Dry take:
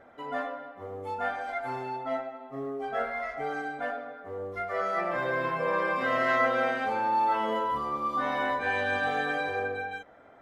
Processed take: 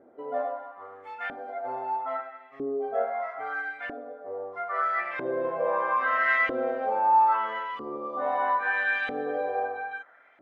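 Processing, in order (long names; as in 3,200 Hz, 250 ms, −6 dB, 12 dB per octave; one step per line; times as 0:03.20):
auto-filter band-pass saw up 0.77 Hz 310–2,500 Hz
level +7 dB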